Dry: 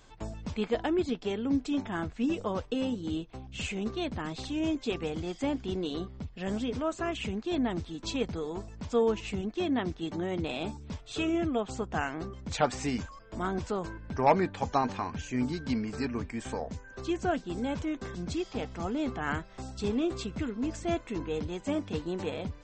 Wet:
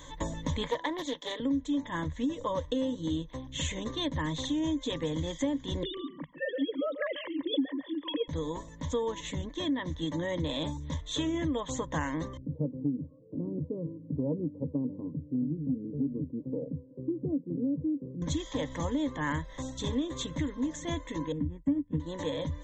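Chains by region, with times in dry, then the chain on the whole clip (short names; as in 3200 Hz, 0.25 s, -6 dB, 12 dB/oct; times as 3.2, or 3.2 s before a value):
0.66–1.4 HPF 440 Hz + upward compressor, threshold -46 dBFS + Doppler distortion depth 0.35 ms
5.83–8.28 sine-wave speech + echo 0.141 s -13 dB
12.37–18.22 elliptic band-pass 110–440 Hz, stop band 60 dB + air absorption 440 m
21.32–22 Butterworth band-stop 5000 Hz, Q 0.64 + resonant low shelf 400 Hz +12.5 dB, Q 1.5 + upward expander 2.5:1, over -39 dBFS
whole clip: vocal rider 2 s; ripple EQ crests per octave 1.1, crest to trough 17 dB; compressor 4:1, threshold -28 dBFS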